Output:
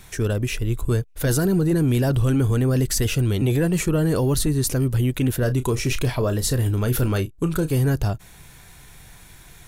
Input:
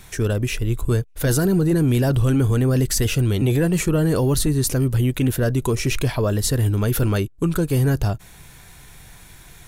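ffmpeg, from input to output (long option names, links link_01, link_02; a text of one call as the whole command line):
ffmpeg -i in.wav -filter_complex "[0:a]asettb=1/sr,asplit=3[link_01][link_02][link_03];[link_01]atrim=end=5.394[link_04];[link_02]atrim=start=5.39:end=7.71,asetpts=PTS-STARTPTS,afade=type=in:duration=0.004:curve=qsin,afade=type=out:start_time=2.316:duration=0.004:curve=qsin,asplit=2[link_05][link_06];[link_06]adelay=32,volume=-12dB[link_07];[link_05][link_07]amix=inputs=2:normalize=0,atrim=end_sample=102312[link_08];[link_03]atrim=start=7.706[link_09];[link_04][link_08]acrossfade=duration=0.004:curve1=hsin:curve2=qsin[link_10];[link_10][link_09]acrossfade=duration=0.004:curve1=qsin:curve2=hsin,volume=-1.5dB" out.wav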